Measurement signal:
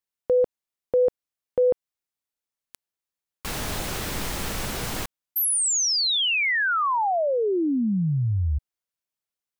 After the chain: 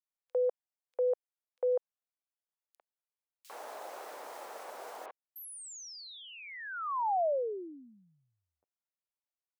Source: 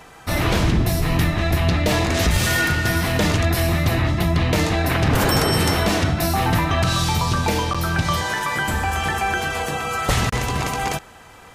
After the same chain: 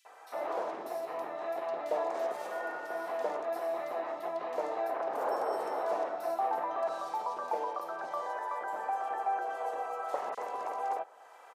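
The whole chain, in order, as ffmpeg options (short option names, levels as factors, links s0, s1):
-filter_complex "[0:a]highpass=f=590:w=0.5412,highpass=f=590:w=1.3066,tiltshelf=f=1200:g=8,acrossover=split=1100[s0][s1];[s1]acompressor=threshold=0.0158:ratio=10:attack=0.11:release=730:detection=peak[s2];[s0][s2]amix=inputs=2:normalize=0,acrossover=split=3100[s3][s4];[s3]adelay=50[s5];[s5][s4]amix=inputs=2:normalize=0,volume=0.398"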